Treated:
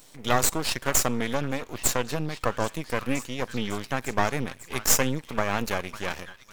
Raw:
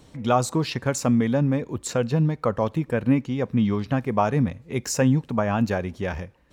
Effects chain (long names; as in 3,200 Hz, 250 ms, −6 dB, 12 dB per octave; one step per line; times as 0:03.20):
RIAA equalisation recording
echo through a band-pass that steps 551 ms, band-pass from 1,400 Hz, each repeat 0.7 octaves, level −9 dB
half-wave rectification
level +2 dB